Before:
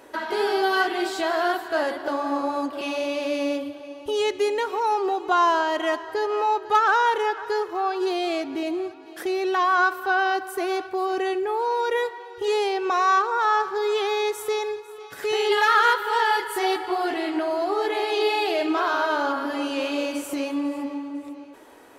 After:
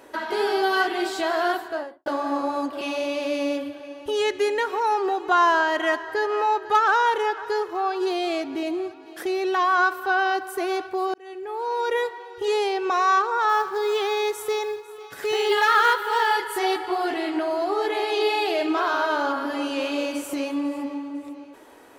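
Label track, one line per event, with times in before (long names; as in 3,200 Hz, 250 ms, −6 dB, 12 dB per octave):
1.540000	2.060000	fade out and dull
3.570000	6.720000	parametric band 1,700 Hz +7 dB 0.49 octaves
11.140000	11.890000	fade in linear
13.490000	16.330000	floating-point word with a short mantissa of 4 bits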